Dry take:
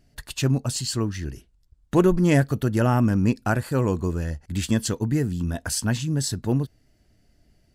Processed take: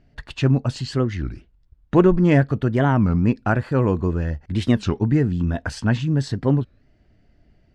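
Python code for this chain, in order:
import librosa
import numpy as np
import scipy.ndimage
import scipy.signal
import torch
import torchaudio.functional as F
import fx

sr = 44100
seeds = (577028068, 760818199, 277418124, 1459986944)

p1 = scipy.signal.sosfilt(scipy.signal.butter(2, 2800.0, 'lowpass', fs=sr, output='sos'), x)
p2 = fx.rider(p1, sr, range_db=10, speed_s=2.0)
p3 = p1 + (p2 * librosa.db_to_amplitude(2.0))
p4 = fx.record_warp(p3, sr, rpm=33.33, depth_cents=250.0)
y = p4 * librosa.db_to_amplitude(-4.0)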